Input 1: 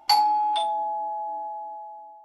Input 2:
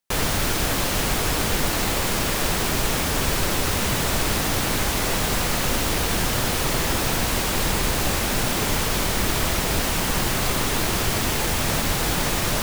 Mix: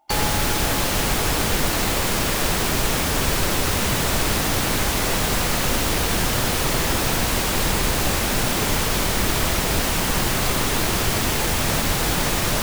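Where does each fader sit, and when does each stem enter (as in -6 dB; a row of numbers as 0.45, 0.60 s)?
-10.5, +1.5 dB; 0.00, 0.00 s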